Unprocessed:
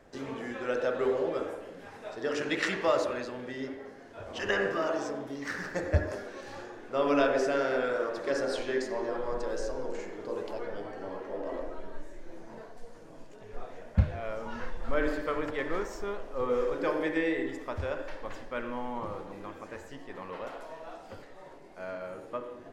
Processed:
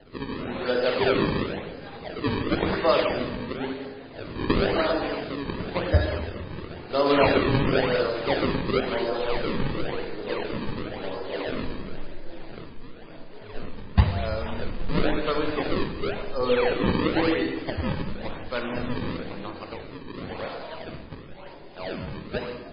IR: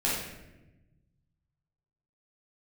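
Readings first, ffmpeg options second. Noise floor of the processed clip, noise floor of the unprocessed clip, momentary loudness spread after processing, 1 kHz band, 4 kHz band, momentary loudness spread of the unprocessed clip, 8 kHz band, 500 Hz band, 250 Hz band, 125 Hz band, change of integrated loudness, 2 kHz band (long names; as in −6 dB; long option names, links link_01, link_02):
−42 dBFS, −49 dBFS, 17 LU, +6.0 dB, +10.5 dB, 18 LU, below −20 dB, +5.0 dB, +8.0 dB, +9.0 dB, +6.0 dB, +4.0 dB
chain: -filter_complex "[0:a]acrusher=samples=36:mix=1:aa=0.000001:lfo=1:lforange=57.6:lforate=0.96,asplit=2[link_01][link_02];[1:a]atrim=start_sample=2205,highshelf=frequency=4200:gain=11.5,adelay=47[link_03];[link_02][link_03]afir=irnorm=-1:irlink=0,volume=-20dB[link_04];[link_01][link_04]amix=inputs=2:normalize=0,volume=6dB" -ar 11025 -c:a libmp3lame -b:a 16k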